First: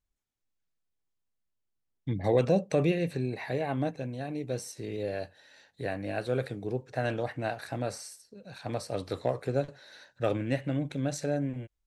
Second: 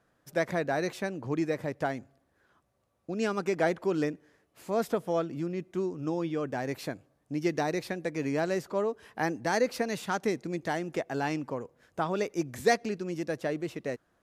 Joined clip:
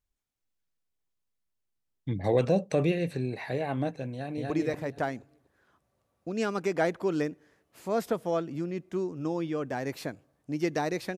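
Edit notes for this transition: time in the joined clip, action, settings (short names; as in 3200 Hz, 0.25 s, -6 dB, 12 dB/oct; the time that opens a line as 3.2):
first
4.13–4.5 echo throw 0.24 s, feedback 30%, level 0 dB
4.5 switch to second from 1.32 s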